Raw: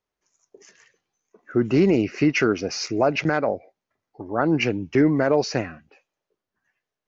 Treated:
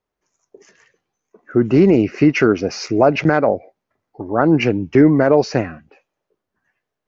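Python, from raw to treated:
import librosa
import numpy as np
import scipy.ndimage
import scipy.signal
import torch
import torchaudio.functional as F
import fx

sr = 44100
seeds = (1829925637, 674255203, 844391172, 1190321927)

p1 = fx.high_shelf(x, sr, hz=2200.0, db=-8.5)
p2 = fx.rider(p1, sr, range_db=10, speed_s=2.0)
y = p1 + (p2 * librosa.db_to_amplitude(2.0))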